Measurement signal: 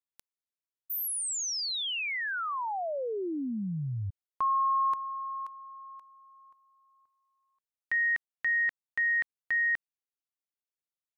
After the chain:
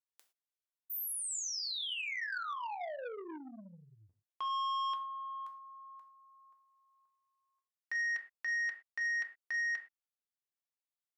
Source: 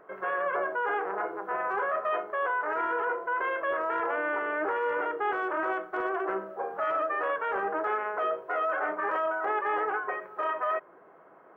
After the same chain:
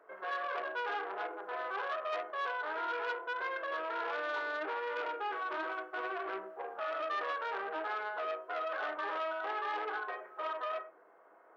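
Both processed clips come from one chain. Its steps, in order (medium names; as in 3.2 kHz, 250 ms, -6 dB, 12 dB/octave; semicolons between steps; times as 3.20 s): high-pass 380 Hz 12 dB/octave; gated-style reverb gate 140 ms falling, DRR 4 dB; transformer saturation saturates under 1.6 kHz; trim -7 dB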